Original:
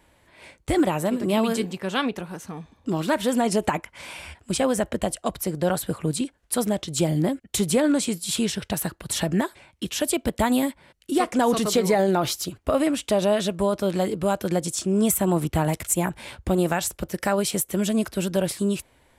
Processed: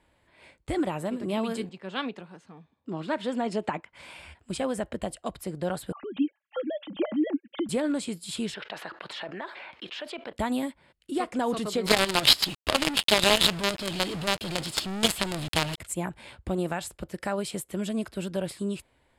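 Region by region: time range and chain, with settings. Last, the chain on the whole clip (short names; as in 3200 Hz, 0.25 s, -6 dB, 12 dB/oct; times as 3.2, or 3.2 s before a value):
1.69–3.93 BPF 130–6000 Hz + three-band expander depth 40%
5.92–7.69 sine-wave speech + comb 3.6 ms, depth 43%
8.54–10.33 Bessel high-pass 780 Hz + air absorption 260 m + fast leveller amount 70%
11.86–15.78 band shelf 3600 Hz +15 dB 1.2 oct + companded quantiser 2-bit
whole clip: LPF 8900 Hz 12 dB/oct; bell 6400 Hz -4.5 dB 0.46 oct; notch 5800 Hz, Q 10; gain -7 dB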